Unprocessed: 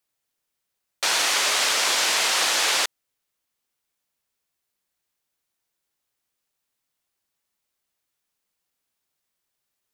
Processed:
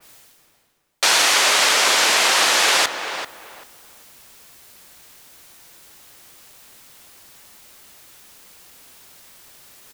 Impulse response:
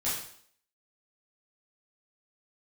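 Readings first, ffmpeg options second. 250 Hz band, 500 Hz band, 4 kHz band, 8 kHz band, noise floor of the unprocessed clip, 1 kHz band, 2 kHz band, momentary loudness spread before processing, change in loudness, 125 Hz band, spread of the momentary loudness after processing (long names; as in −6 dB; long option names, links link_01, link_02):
+7.5 dB, +7.5 dB, +5.0 dB, +4.5 dB, −81 dBFS, +7.0 dB, +6.5 dB, 4 LU, +5.0 dB, can't be measured, 14 LU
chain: -filter_complex "[0:a]areverse,acompressor=mode=upward:threshold=-32dB:ratio=2.5,areverse,asplit=2[link_01][link_02];[link_02]adelay=389,lowpass=frequency=1800:poles=1,volume=-7dB,asplit=2[link_03][link_04];[link_04]adelay=389,lowpass=frequency=1800:poles=1,volume=0.24,asplit=2[link_05][link_06];[link_06]adelay=389,lowpass=frequency=1800:poles=1,volume=0.24[link_07];[link_01][link_03][link_05][link_07]amix=inputs=4:normalize=0,adynamicequalizer=threshold=0.02:dfrequency=2800:dqfactor=0.7:tfrequency=2800:tqfactor=0.7:attack=5:release=100:ratio=0.375:range=1.5:mode=cutabove:tftype=highshelf,volume=6.5dB"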